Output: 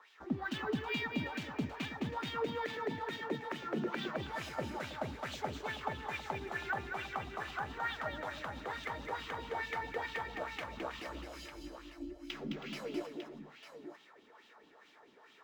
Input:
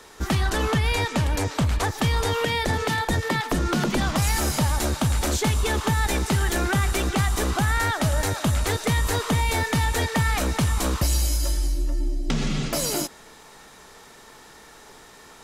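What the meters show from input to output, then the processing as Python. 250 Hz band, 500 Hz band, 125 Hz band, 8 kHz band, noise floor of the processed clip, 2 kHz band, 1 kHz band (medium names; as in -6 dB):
-14.5 dB, -12.5 dB, -24.0 dB, -29.5 dB, -62 dBFS, -12.5 dB, -12.5 dB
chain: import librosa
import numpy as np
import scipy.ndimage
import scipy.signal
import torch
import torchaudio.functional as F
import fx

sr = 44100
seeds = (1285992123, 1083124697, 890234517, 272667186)

p1 = fx.wah_lfo(x, sr, hz=2.3, low_hz=260.0, high_hz=3100.0, q=3.3)
p2 = p1 + fx.echo_multitap(p1, sr, ms=(213, 322, 900), db=(-6.0, -14.5, -10.0), dry=0)
p3 = np.interp(np.arange(len(p2)), np.arange(len(p2))[::2], p2[::2])
y = F.gain(torch.from_numpy(p3), -5.0).numpy()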